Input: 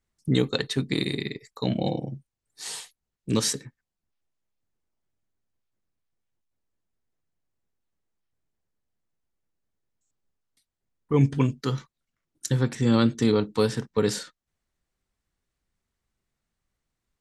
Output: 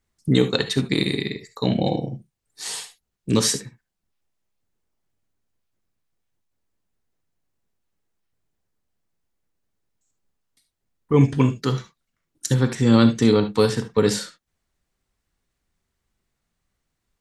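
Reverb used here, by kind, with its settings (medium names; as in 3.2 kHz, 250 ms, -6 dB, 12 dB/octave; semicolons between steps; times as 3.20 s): gated-style reverb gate 90 ms rising, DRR 9.5 dB; trim +4.5 dB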